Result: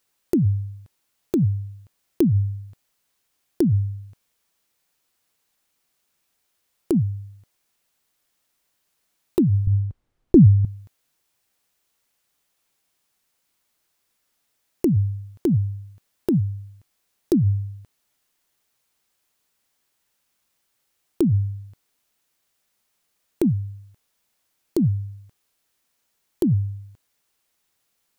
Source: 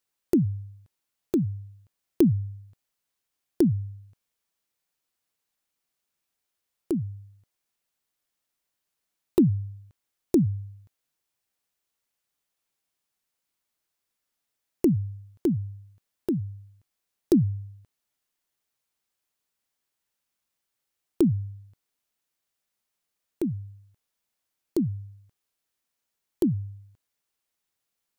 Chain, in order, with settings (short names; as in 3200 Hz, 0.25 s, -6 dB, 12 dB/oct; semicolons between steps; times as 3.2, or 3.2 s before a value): 9.67–10.65 tilt -4.5 dB/oct; in parallel at +1 dB: negative-ratio compressor -26 dBFS, ratio -0.5